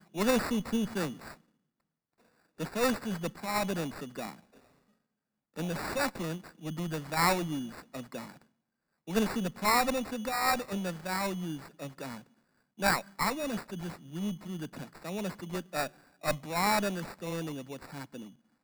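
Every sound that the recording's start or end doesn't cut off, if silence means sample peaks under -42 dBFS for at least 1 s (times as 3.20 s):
2.60–4.33 s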